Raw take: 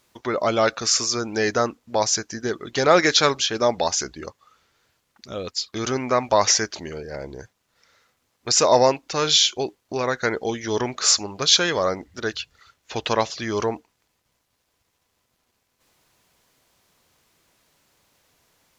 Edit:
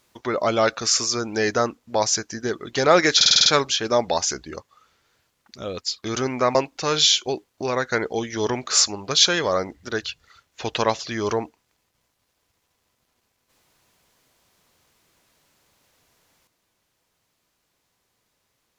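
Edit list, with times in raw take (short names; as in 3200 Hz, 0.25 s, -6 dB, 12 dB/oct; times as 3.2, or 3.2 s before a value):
3.16 stutter 0.05 s, 7 plays
6.25–8.86 cut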